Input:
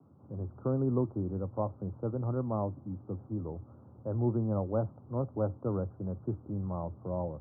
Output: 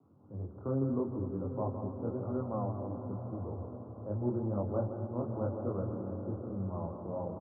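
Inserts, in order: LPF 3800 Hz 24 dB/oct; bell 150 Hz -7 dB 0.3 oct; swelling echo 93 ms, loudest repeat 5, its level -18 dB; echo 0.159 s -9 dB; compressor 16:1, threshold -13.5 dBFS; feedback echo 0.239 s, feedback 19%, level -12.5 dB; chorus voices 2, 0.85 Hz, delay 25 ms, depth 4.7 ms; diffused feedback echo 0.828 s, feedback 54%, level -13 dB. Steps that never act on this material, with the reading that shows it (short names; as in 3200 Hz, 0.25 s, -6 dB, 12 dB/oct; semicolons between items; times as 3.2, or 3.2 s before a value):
LPF 3800 Hz: input band ends at 1100 Hz; compressor, threshold -13.5 dBFS: input peak -16.5 dBFS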